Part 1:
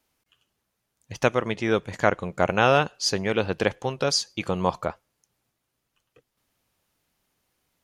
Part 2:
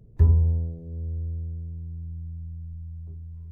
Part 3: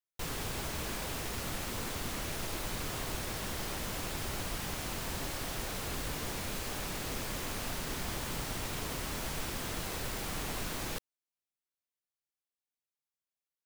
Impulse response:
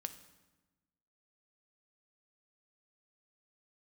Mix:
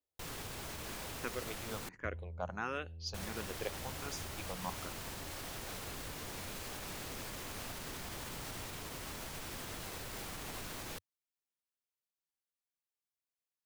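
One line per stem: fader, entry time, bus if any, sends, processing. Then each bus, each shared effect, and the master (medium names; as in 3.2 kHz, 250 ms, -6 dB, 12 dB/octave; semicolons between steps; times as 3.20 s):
-15.5 dB, 0.00 s, no send, level-controlled noise filter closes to 740 Hz, open at -20 dBFS; barber-pole phaser +1.4 Hz
-14.5 dB, 1.85 s, no send, compression, threshold -25 dBFS, peak gain reduction 12 dB
-4.5 dB, 0.00 s, muted 1.89–3.14 s, no send, peaking EQ 94 Hz +4 dB; peak limiter -28.5 dBFS, peak gain reduction 4.5 dB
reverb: none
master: bass shelf 200 Hz -4.5 dB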